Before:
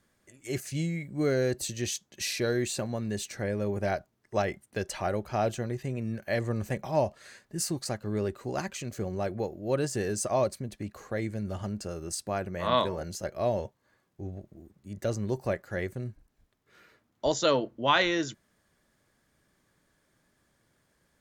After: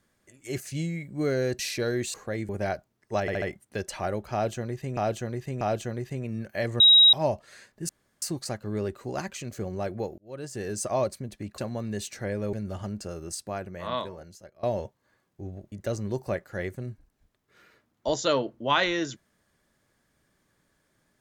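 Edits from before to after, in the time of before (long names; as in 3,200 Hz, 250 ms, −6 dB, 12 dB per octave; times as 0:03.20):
0:01.59–0:02.21: remove
0:02.76–0:03.71: swap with 0:10.98–0:11.33
0:04.43: stutter 0.07 s, 4 plays
0:05.34–0:05.98: repeat, 3 plays
0:06.53–0:06.86: beep over 3,820 Hz −12 dBFS
0:07.62: splice in room tone 0.33 s
0:09.58–0:10.23: fade in
0:11.98–0:13.43: fade out, to −21.5 dB
0:14.52–0:14.90: remove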